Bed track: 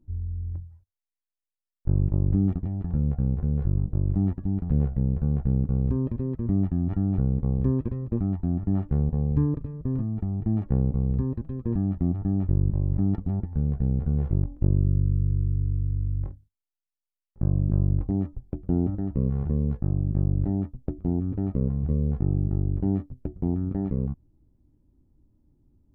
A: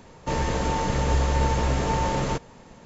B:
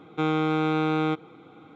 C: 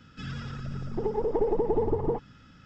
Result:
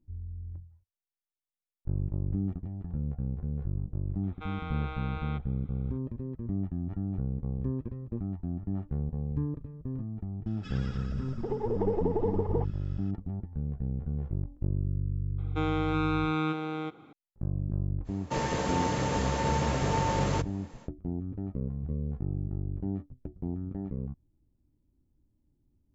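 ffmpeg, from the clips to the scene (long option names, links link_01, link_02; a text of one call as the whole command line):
ffmpeg -i bed.wav -i cue0.wav -i cue1.wav -i cue2.wav -filter_complex "[2:a]asplit=2[link_01][link_02];[0:a]volume=-8.5dB[link_03];[link_01]highpass=720,lowpass=3800[link_04];[link_02]aecho=1:1:371:0.596[link_05];[1:a]highpass=frequency=90:width=0.5412,highpass=frequency=90:width=1.3066[link_06];[link_04]atrim=end=1.75,asetpts=PTS-STARTPTS,volume=-10.5dB,afade=type=in:duration=0.004:curve=hsin,afade=type=out:start_time=1.746:duration=0.004:curve=hsin,adelay=4230[link_07];[3:a]atrim=end=2.65,asetpts=PTS-STARTPTS,volume=-3.5dB,afade=type=in:duration=0.004:curve=hsin,afade=type=out:start_time=2.646:duration=0.004:curve=hsin,adelay=10460[link_08];[link_05]atrim=end=1.75,asetpts=PTS-STARTPTS,volume=-5.5dB,afade=type=in:duration=0.004:curve=hsin,afade=type=out:start_time=1.746:duration=0.004:curve=hsin,adelay=15380[link_09];[link_06]atrim=end=2.85,asetpts=PTS-STARTPTS,volume=-3.5dB,afade=type=in:duration=0.05,afade=type=out:start_time=2.8:duration=0.05,adelay=18040[link_10];[link_03][link_07][link_08][link_09][link_10]amix=inputs=5:normalize=0" out.wav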